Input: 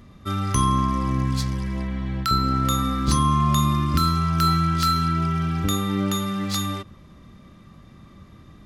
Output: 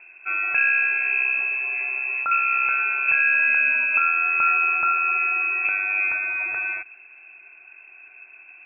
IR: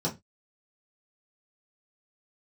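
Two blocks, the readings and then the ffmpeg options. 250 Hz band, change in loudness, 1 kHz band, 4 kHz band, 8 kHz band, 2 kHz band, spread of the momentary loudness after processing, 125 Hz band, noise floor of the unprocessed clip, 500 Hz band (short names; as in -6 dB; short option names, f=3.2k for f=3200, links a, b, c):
under -30 dB, +3.0 dB, -3.0 dB, under -40 dB, under -40 dB, +21.0 dB, 7 LU, under -40 dB, -48 dBFS, under -10 dB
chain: -af "lowpass=f=2.3k:t=q:w=0.5098,lowpass=f=2.3k:t=q:w=0.6013,lowpass=f=2.3k:t=q:w=0.9,lowpass=f=2.3k:t=q:w=2.563,afreqshift=-2700"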